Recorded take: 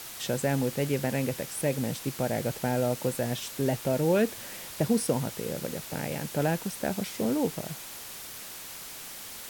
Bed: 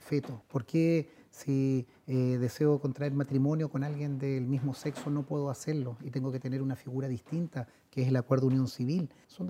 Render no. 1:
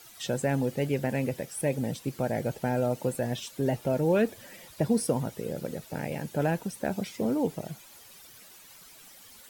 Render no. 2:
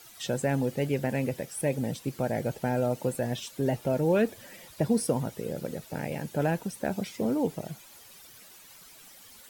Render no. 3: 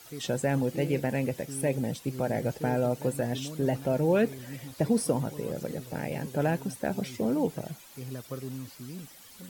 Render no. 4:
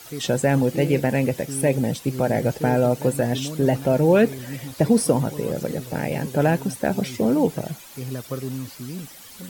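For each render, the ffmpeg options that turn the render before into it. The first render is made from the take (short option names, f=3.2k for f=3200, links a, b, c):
-af "afftdn=nr=13:nf=-42"
-af anull
-filter_complex "[1:a]volume=-11dB[a];[0:a][a]amix=inputs=2:normalize=0"
-af "volume=8dB"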